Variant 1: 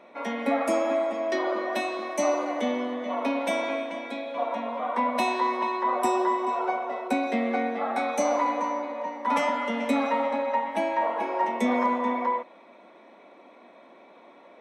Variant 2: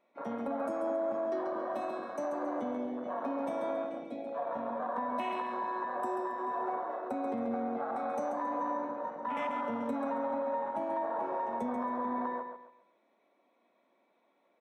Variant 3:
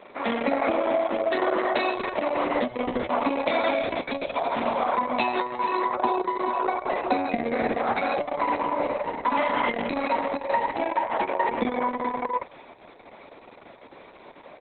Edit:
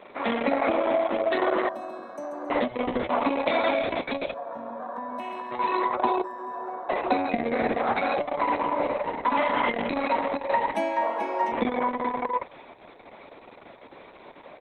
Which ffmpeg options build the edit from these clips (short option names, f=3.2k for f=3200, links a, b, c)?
-filter_complex "[1:a]asplit=3[a][b][c];[2:a]asplit=5[d][e][f][g][h];[d]atrim=end=1.692[i];[a]atrim=start=1.688:end=2.502[j];[e]atrim=start=2.498:end=4.342[k];[b]atrim=start=4.338:end=5.512[l];[f]atrim=start=5.508:end=6.242[m];[c]atrim=start=6.238:end=6.892[n];[g]atrim=start=6.888:end=10.752[o];[0:a]atrim=start=10.748:end=11.522[p];[h]atrim=start=11.518[q];[i][j]acrossfade=d=0.004:c1=hsin:c2=hsin[r];[r][k]acrossfade=d=0.004:c1=hsin:c2=hsin[s];[s][l]acrossfade=d=0.004:c1=hsin:c2=hsin[t];[t][m]acrossfade=d=0.004:c1=hsin:c2=hsin[u];[u][n]acrossfade=d=0.004:c1=hsin:c2=hsin[v];[v][o]acrossfade=d=0.004:c1=hsin:c2=hsin[w];[w][p]acrossfade=d=0.004:c1=hsin:c2=hsin[x];[x][q]acrossfade=d=0.004:c1=hsin:c2=hsin"